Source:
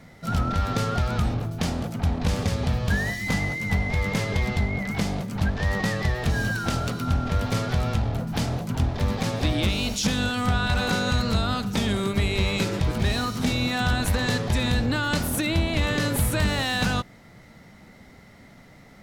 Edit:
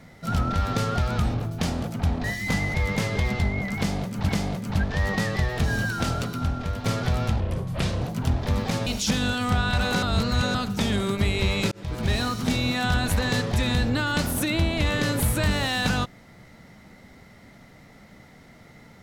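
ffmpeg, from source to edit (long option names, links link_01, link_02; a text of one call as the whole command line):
ffmpeg -i in.wav -filter_complex "[0:a]asplit=11[link_01][link_02][link_03][link_04][link_05][link_06][link_07][link_08][link_09][link_10][link_11];[link_01]atrim=end=2.242[link_12];[link_02]atrim=start=3.038:end=3.542[link_13];[link_03]atrim=start=3.908:end=5.462[link_14];[link_04]atrim=start=4.948:end=7.5,asetpts=PTS-STARTPTS,afade=type=out:start_time=1.842:duration=0.71:silence=0.473151[link_15];[link_05]atrim=start=7.5:end=8.064,asetpts=PTS-STARTPTS,afade=type=in:duration=0.004:curve=hsin:silence=0.473151[link_16];[link_06]atrim=start=8.06:end=8.54,asetpts=PTS-STARTPTS,asetrate=34398,aresample=44100,atrim=end_sample=27138,asetpts=PTS-STARTPTS[link_17];[link_07]atrim=start=8.536:end=9.392[link_18];[link_08]atrim=start=9.828:end=10.992[link_19];[link_09]atrim=start=10.988:end=11.512,asetpts=PTS-STARTPTS,areverse[link_20];[link_10]atrim=start=11.508:end=12.68,asetpts=PTS-STARTPTS,afade=type=out:start_time=1.168:duration=0.004:curve=hsin[link_21];[link_11]atrim=start=12.68,asetpts=PTS-STARTPTS,afade=type=in:duration=0.4[link_22];[link_12][link_13]acrossfade=duration=0.004:curve1=hsin:curve2=hsin[link_23];[link_23][link_14]acrossfade=duration=0.004:curve1=hsin:curve2=hsin[link_24];[link_15][link_16]concat=n=2:v=0:a=1[link_25];[link_24][link_25]acrossfade=duration=0.004:curve1=hsin:curve2=hsin[link_26];[link_26][link_17]acrossfade=duration=0.004:curve1=hsin:curve2=hsin[link_27];[link_27][link_18]acrossfade=duration=0.004:curve1=hsin:curve2=hsin[link_28];[link_28][link_19]acrossfade=duration=0.004:curve1=hsin:curve2=hsin[link_29];[link_29][link_20]acrossfade=duration=0.004:curve1=hsin:curve2=hsin[link_30];[link_21][link_22]concat=n=2:v=0:a=1[link_31];[link_30][link_31]acrossfade=duration=0.004:curve1=hsin:curve2=hsin" out.wav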